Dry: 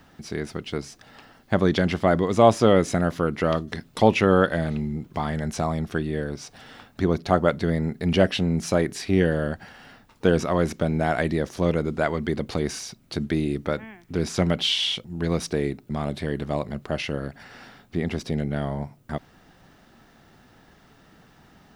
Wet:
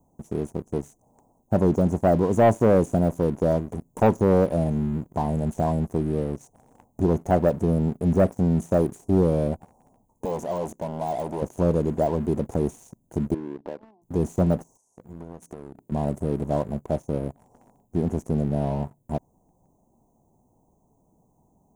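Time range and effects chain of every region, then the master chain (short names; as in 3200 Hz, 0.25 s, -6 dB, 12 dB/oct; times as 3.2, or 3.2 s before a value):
10.25–11.42 bell 83 Hz -10 dB 2.6 oct + core saturation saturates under 3000 Hz
13.34–14.02 Butterworth band-pass 600 Hz, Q 0.53 + compressor 2.5:1, threshold -35 dBFS
14.77–15.92 low shelf 74 Hz -10.5 dB + notches 60/120/180/240/300 Hz + compressor 12:1, threshold -35 dBFS
whole clip: de-esser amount 85%; Chebyshev band-stop 1000–6400 Hz, order 5; sample leveller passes 2; gain -4.5 dB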